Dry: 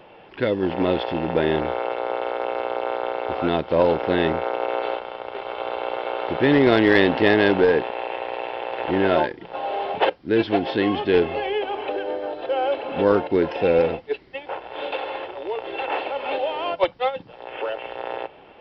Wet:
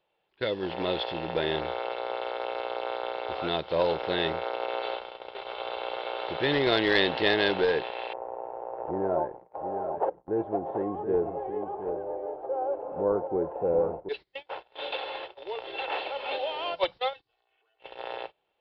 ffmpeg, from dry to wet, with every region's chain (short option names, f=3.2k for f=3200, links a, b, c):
-filter_complex "[0:a]asettb=1/sr,asplit=3[a][b][c];[a]atrim=end=8.134[d];[b]atrim=start=8.13:end=14.09,asetpts=PTS-STARTPTS,afade=t=in:d=0.004:c=qsin,afade=t=out:st=5.956:d=0.004:c=qsin,lowpass=f=1k:w=0.5412,lowpass=f=1k:w=1.3066,aecho=1:1:727:0.398,atrim=end_sample=262836[e];[c]atrim=start=14.086[f];[d][e]acrossfade=d=0.004:c1=hsin:c2=qsin[g];[g][f]acrossfade=d=0.004:c1=qsin:c2=hsin,asettb=1/sr,asplit=3[h][i][j];[h]atrim=end=17.134[k];[i]atrim=start=17.13:end=17.8,asetpts=PTS-STARTPTS,afade=t=in:d=0.004:c=qsin,afade=t=out:st=0.666:d=0.004:c=qsin,equalizer=f=290:w=0.42:g=-6.5,aecho=1:1:2.7:0.85,atrim=end_sample=29547,acompressor=threshold=-42dB:ratio=6:attack=3.2:release=140:knee=1:detection=peak[l];[j]atrim=start=17.796[m];[k][l]acrossfade=d=0.004:c1=hsin:c2=qsin[n];[n][m]acrossfade=d=0.004:c1=qsin:c2=hsin,agate=range=-23dB:threshold=-32dB:ratio=16:detection=peak,equalizer=f=100:t=o:w=0.67:g=-4,equalizer=f=250:t=o:w=0.67:g=-9,equalizer=f=4k:t=o:w=0.67:g=11,volume=-6.5dB"